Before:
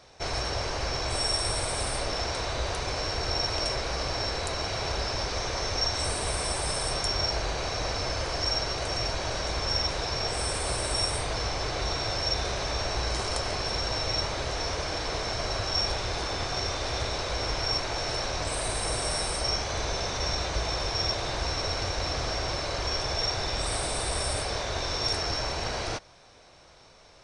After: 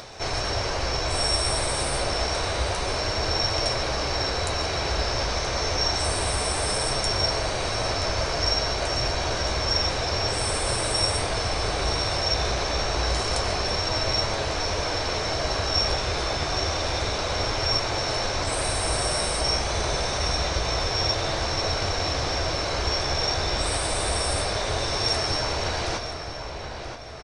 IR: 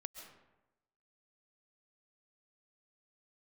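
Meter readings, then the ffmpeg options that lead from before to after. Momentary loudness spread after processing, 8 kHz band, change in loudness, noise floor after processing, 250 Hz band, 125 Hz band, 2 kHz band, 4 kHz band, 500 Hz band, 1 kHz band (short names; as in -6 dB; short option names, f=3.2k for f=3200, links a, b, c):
3 LU, +4.0 dB, +4.0 dB, -32 dBFS, +5.0 dB, +4.5 dB, +4.5 dB, +4.0 dB, +5.0 dB, +4.5 dB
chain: -filter_complex "[0:a]asplit=2[a][b];[b]adelay=977,lowpass=f=3.8k:p=1,volume=-7.5dB,asplit=2[c][d];[d]adelay=977,lowpass=f=3.8k:p=1,volume=0.33,asplit=2[e][f];[f]adelay=977,lowpass=f=3.8k:p=1,volume=0.33,asplit=2[g][h];[h]adelay=977,lowpass=f=3.8k:p=1,volume=0.33[i];[a][c][e][g][i]amix=inputs=5:normalize=0,acompressor=mode=upward:threshold=-36dB:ratio=2.5,asplit=2[j][k];[1:a]atrim=start_sample=2205[l];[k][l]afir=irnorm=-1:irlink=0,volume=7.5dB[m];[j][m]amix=inputs=2:normalize=0,flanger=delay=9:depth=5.4:regen=-46:speed=0.28:shape=sinusoidal"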